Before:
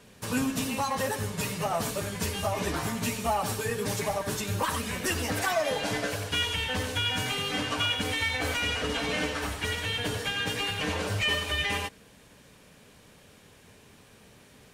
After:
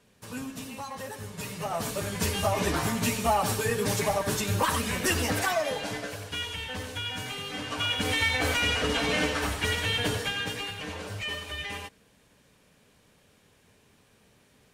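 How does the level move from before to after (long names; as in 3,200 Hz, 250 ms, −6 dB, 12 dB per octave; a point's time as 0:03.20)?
0:01.10 −9 dB
0:02.27 +3 dB
0:05.24 +3 dB
0:06.07 −5.5 dB
0:07.59 −5.5 dB
0:08.12 +3 dB
0:10.08 +3 dB
0:10.84 −7 dB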